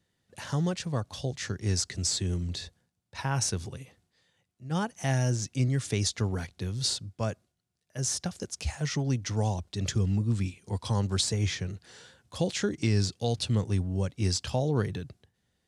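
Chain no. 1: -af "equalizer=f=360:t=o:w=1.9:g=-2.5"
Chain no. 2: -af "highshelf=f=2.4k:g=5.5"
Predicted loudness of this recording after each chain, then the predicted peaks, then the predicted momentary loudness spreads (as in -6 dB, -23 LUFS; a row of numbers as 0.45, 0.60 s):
-31.0, -28.5 LUFS; -15.0, -10.5 dBFS; 10, 13 LU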